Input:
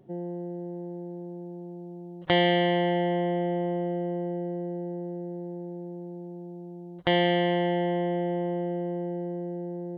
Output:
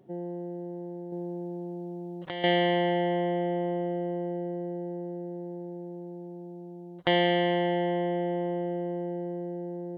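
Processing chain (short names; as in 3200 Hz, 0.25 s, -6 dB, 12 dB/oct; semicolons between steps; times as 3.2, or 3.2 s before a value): 1.12–2.44 negative-ratio compressor -30 dBFS, ratio -1; low shelf 98 Hz -11.5 dB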